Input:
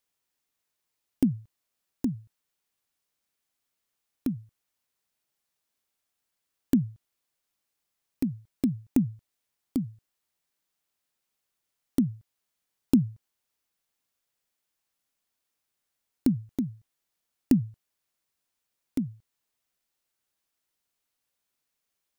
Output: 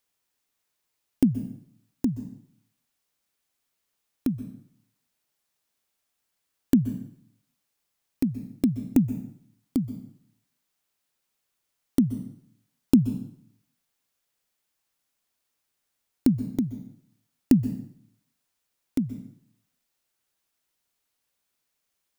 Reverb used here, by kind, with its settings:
dense smooth reverb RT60 0.66 s, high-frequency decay 0.9×, pre-delay 115 ms, DRR 12.5 dB
level +3 dB

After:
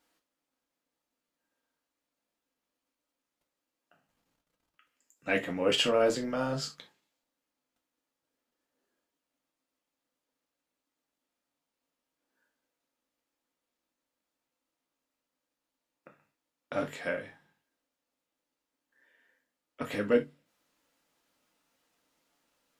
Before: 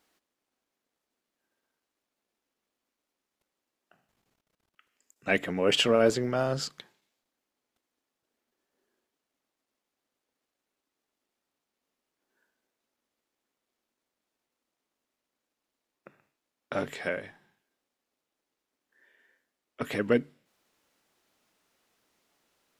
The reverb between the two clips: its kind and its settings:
reverb whose tail is shaped and stops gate 90 ms falling, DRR 2 dB
level −4.5 dB

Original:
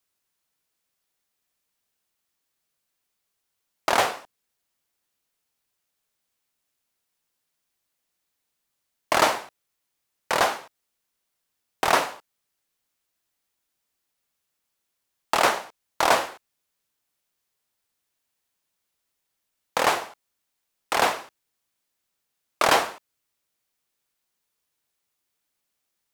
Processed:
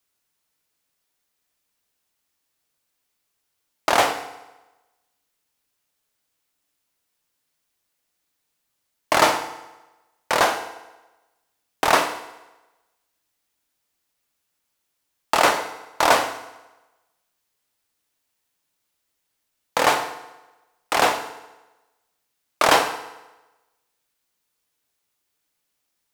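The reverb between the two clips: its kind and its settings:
feedback delay network reverb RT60 1.1 s, low-frequency decay 0.85×, high-frequency decay 0.85×, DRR 8 dB
level +2.5 dB

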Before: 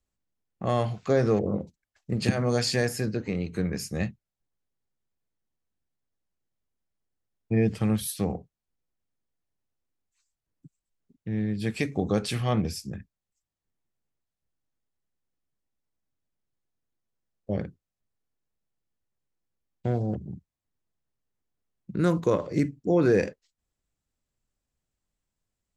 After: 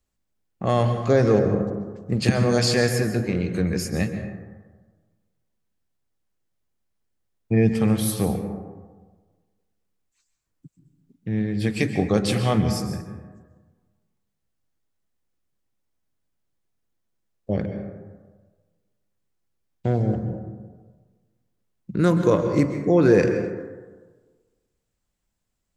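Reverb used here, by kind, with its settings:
dense smooth reverb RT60 1.4 s, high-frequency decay 0.35×, pre-delay 115 ms, DRR 7 dB
level +4.5 dB

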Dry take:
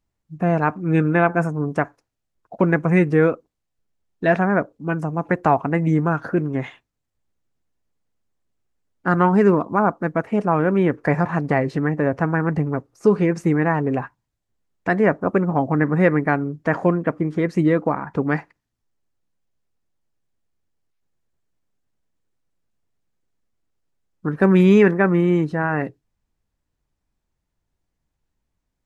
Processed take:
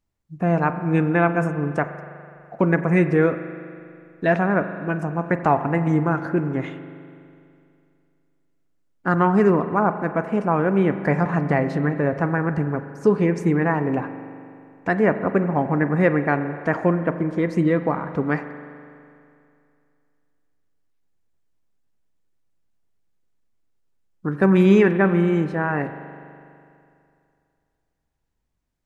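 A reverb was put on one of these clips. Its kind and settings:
spring reverb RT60 2.5 s, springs 41 ms, chirp 25 ms, DRR 9.5 dB
level −1.5 dB

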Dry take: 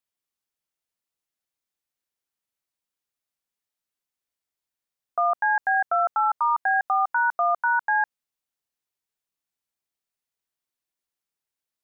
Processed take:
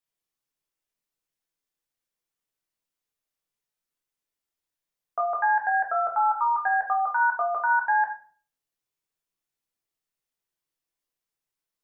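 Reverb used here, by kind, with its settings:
rectangular room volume 37 cubic metres, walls mixed, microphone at 0.59 metres
level −3 dB

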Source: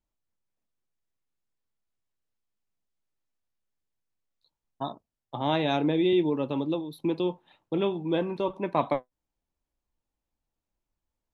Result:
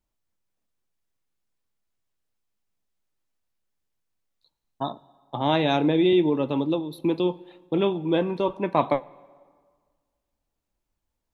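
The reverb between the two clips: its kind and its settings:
dense smooth reverb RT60 1.7 s, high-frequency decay 0.75×, DRR 20 dB
level +4 dB

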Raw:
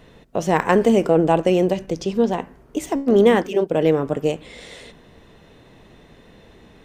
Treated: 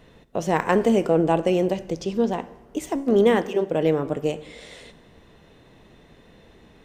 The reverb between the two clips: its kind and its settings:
dense smooth reverb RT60 1.2 s, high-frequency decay 0.9×, DRR 16 dB
level −3.5 dB

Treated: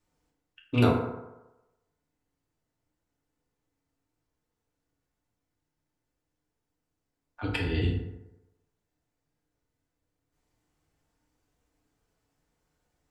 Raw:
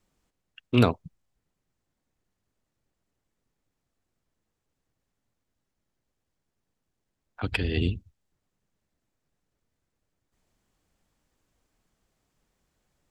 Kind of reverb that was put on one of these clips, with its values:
feedback delay network reverb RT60 1 s, low-frequency decay 0.8×, high-frequency decay 0.45×, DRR −3.5 dB
level −6.5 dB

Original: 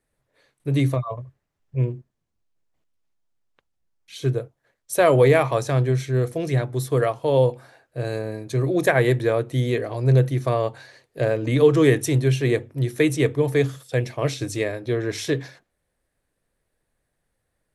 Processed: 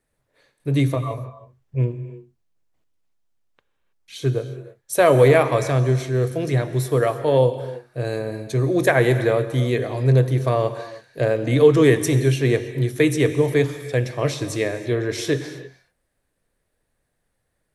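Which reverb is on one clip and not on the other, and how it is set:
reverb whose tail is shaped and stops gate 350 ms flat, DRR 10.5 dB
level +1.5 dB

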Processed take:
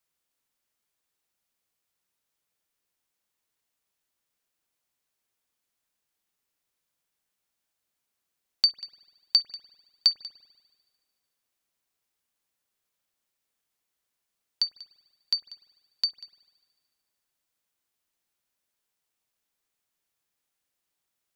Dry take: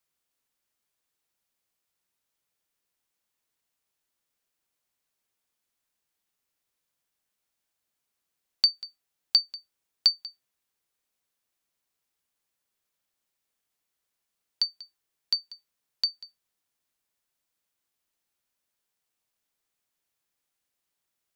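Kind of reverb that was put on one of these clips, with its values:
spring reverb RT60 1.6 s, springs 49 ms, chirp 25 ms, DRR 15 dB

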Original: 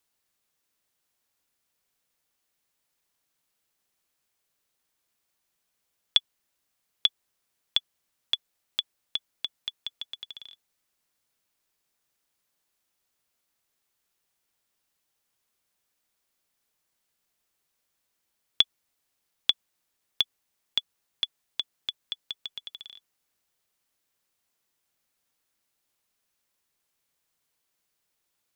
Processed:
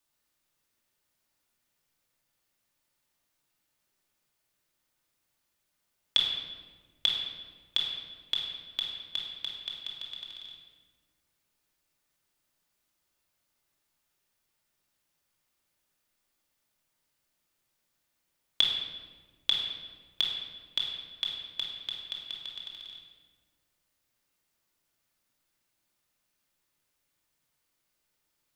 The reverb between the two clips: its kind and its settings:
rectangular room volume 1,300 cubic metres, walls mixed, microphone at 2.6 metres
level −4 dB

